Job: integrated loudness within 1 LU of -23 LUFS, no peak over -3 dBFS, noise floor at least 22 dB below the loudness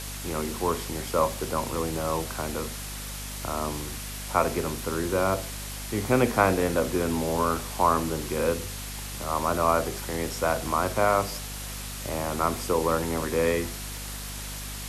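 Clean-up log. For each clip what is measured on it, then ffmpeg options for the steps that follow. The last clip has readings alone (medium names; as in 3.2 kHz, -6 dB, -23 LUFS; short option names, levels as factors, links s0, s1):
hum 50 Hz; highest harmonic 250 Hz; hum level -36 dBFS; noise floor -36 dBFS; noise floor target -50 dBFS; loudness -27.5 LUFS; peak level -4.5 dBFS; loudness target -23.0 LUFS
-> -af "bandreject=f=50:t=h:w=4,bandreject=f=100:t=h:w=4,bandreject=f=150:t=h:w=4,bandreject=f=200:t=h:w=4,bandreject=f=250:t=h:w=4"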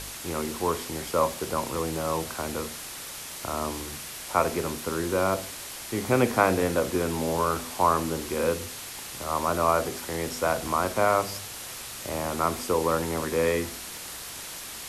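hum not found; noise floor -39 dBFS; noise floor target -50 dBFS
-> -af "afftdn=nr=11:nf=-39"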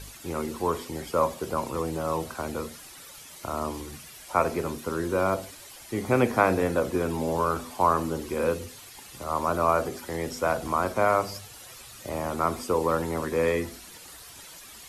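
noise floor -47 dBFS; noise floor target -50 dBFS
-> -af "afftdn=nr=6:nf=-47"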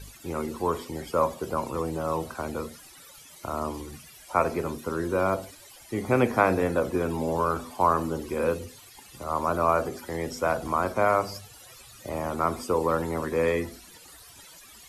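noise floor -50 dBFS; loudness -27.5 LUFS; peak level -5.0 dBFS; loudness target -23.0 LUFS
-> -af "volume=1.68,alimiter=limit=0.708:level=0:latency=1"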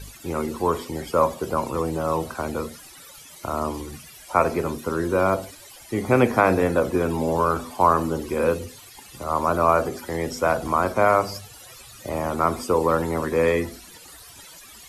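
loudness -23.0 LUFS; peak level -3.0 dBFS; noise floor -45 dBFS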